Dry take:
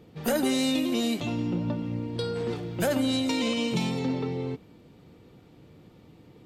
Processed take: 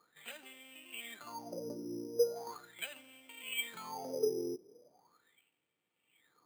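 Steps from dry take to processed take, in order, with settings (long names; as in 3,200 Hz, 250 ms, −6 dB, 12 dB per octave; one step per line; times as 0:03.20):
LFO wah 0.39 Hz 360–3,800 Hz, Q 13
bad sample-rate conversion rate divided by 8×, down filtered, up hold
level +7 dB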